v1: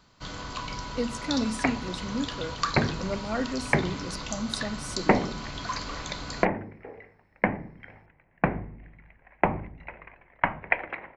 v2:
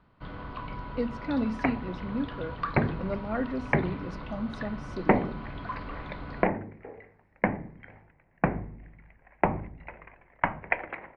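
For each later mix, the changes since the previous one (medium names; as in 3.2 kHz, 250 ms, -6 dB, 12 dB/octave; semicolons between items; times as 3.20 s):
first sound: add distance through air 290 m; master: add distance through air 310 m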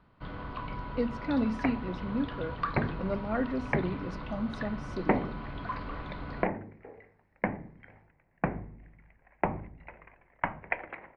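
second sound -4.5 dB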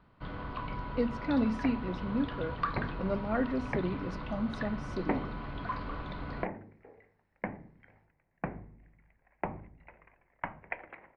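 second sound -6.5 dB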